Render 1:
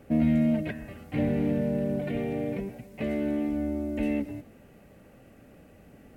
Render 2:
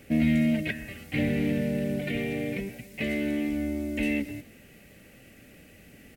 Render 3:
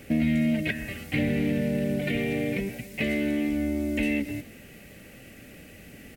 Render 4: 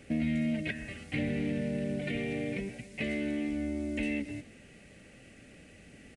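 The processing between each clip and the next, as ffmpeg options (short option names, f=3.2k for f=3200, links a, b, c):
-af "firequalizer=gain_entry='entry(320,0);entry(990,-6);entry(2000,10)':delay=0.05:min_phase=1"
-af "acompressor=threshold=-30dB:ratio=2,volume=5dB"
-af "aresample=22050,aresample=44100,volume=-6.5dB"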